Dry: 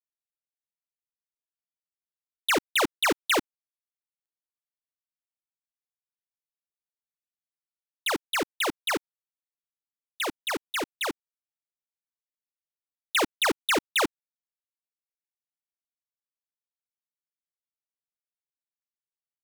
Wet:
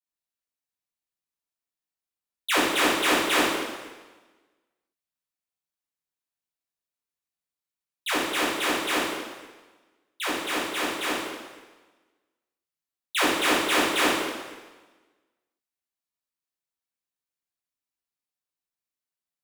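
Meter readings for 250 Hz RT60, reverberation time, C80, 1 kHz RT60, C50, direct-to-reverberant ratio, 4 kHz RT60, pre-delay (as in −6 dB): 1.2 s, 1.3 s, 2.0 dB, 1.3 s, −0.5 dB, −9.0 dB, 1.2 s, 5 ms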